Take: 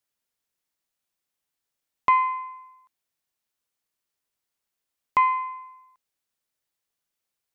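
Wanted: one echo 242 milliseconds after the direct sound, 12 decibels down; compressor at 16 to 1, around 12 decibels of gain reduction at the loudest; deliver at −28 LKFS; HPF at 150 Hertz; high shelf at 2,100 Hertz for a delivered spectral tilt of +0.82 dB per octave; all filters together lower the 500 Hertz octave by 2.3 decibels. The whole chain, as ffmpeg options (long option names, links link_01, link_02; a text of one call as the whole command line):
ffmpeg -i in.wav -af "highpass=150,equalizer=frequency=500:width_type=o:gain=-3.5,highshelf=frequency=2100:gain=5.5,acompressor=threshold=-26dB:ratio=16,aecho=1:1:242:0.251,volume=5.5dB" out.wav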